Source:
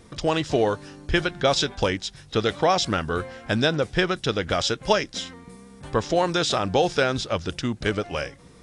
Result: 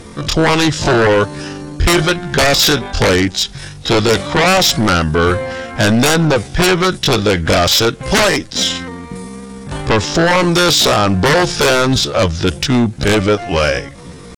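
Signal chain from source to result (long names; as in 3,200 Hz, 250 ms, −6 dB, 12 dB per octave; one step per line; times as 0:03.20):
tempo change 0.6×
sine wavefolder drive 16 dB, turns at −4 dBFS
level −3.5 dB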